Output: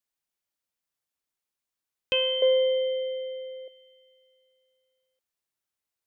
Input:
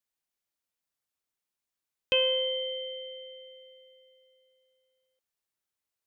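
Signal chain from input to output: 2.42–3.68 band shelf 840 Hz +13 dB 2.6 oct

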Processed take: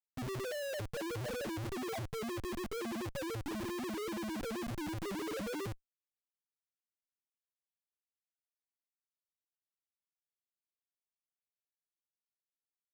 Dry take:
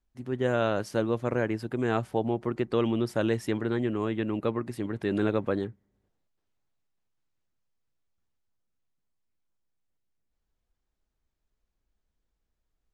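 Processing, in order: loudest bins only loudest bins 1; Schmitt trigger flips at -53.5 dBFS; gain +2 dB

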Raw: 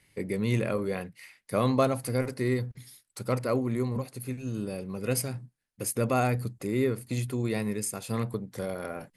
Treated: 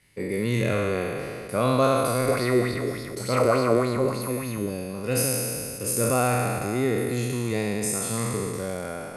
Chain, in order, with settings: spectral trails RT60 2.58 s; 2.28–4.7 LFO bell 3.4 Hz 380–4700 Hz +11 dB

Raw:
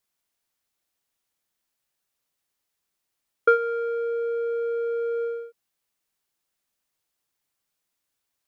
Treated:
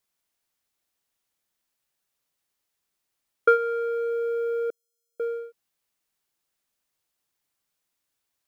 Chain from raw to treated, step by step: 4.7–5.2 inverse Chebyshev high-pass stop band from 2200 Hz, stop band 60 dB; short-mantissa float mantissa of 6-bit

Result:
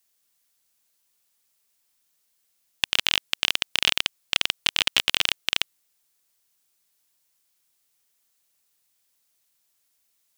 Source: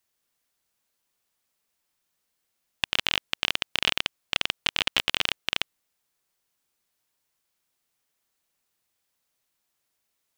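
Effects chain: high shelf 3100 Hz +10 dB; gain -1.5 dB

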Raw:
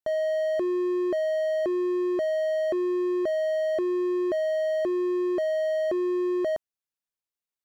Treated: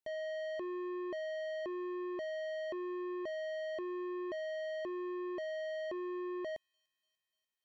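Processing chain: soft clip -36 dBFS, distortion -8 dB; thin delay 0.294 s, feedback 66%, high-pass 5500 Hz, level -16.5 dB; gain -2.5 dB

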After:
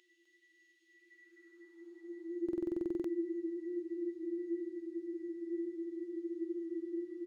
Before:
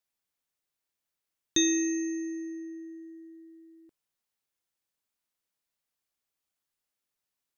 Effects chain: LPF 5200 Hz 12 dB/oct; tone controls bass +7 dB, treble +1 dB; Paulstretch 36×, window 0.10 s, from 3.3; high-pass sweep 2800 Hz -> 74 Hz, 0.89–3.99; speed mistake 24 fps film run at 25 fps; on a send: echo 0.255 s -6.5 dB; on the sum: stuck buffer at 2.44, samples 2048, times 12; gain +8 dB

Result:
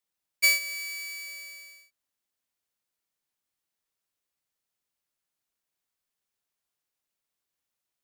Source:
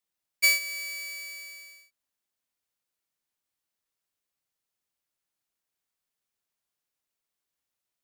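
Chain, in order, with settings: 0.74–1.27 HPF 720 Hz 12 dB/oct

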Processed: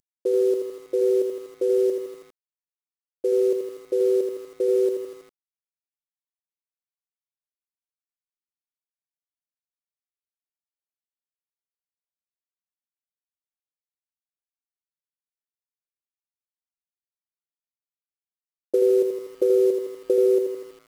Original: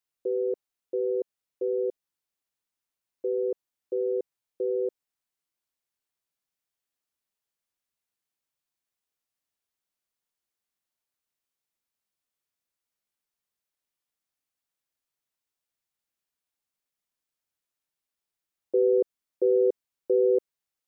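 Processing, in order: CVSD 64 kbps; compressor 8:1, threshold -23 dBFS, peak gain reduction 5 dB; lo-fi delay 81 ms, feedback 55%, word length 9-bit, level -6 dB; gain +6.5 dB

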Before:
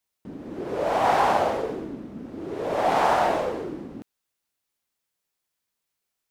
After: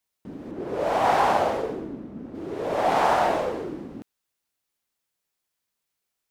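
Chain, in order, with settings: 0.51–2.35 mismatched tape noise reduction decoder only

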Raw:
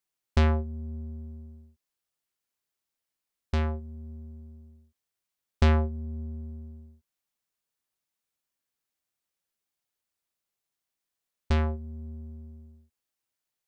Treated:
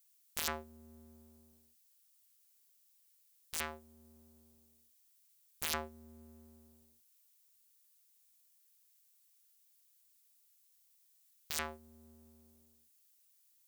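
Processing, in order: differentiator; wrapped overs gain 32 dB; gain +13.5 dB

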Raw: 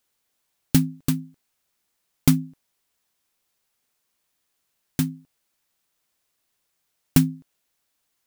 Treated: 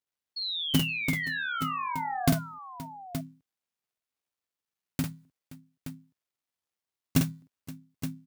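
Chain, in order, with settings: switching dead time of 0.083 ms; HPF 50 Hz 12 dB/oct; harmoniser -5 st -15 dB; painted sound fall, 0.36–2.34, 650–4400 Hz -27 dBFS; on a send: tapped delay 48/523/872 ms -4.5/-18.5/-10.5 dB; on the sum: gain -7 dB

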